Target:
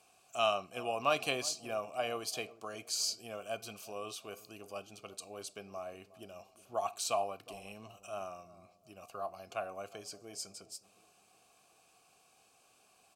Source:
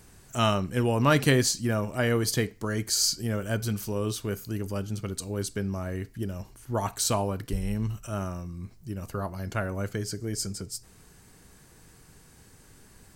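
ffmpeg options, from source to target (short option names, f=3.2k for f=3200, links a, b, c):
-filter_complex "[0:a]asplit=3[a][b][c];[a]bandpass=f=730:t=q:w=8,volume=0dB[d];[b]bandpass=f=1.09k:t=q:w=8,volume=-6dB[e];[c]bandpass=f=2.44k:t=q:w=8,volume=-9dB[f];[d][e][f]amix=inputs=3:normalize=0,acrossover=split=1800[g][h];[g]asplit=2[i][j];[j]adelay=362,lowpass=f=890:p=1,volume=-16.5dB,asplit=2[k][l];[l]adelay=362,lowpass=f=890:p=1,volume=0.49,asplit=2[m][n];[n]adelay=362,lowpass=f=890:p=1,volume=0.49,asplit=2[o][p];[p]adelay=362,lowpass=f=890:p=1,volume=0.49[q];[i][k][m][o][q]amix=inputs=5:normalize=0[r];[h]crystalizer=i=6:c=0[s];[r][s]amix=inputs=2:normalize=0,volume=2.5dB"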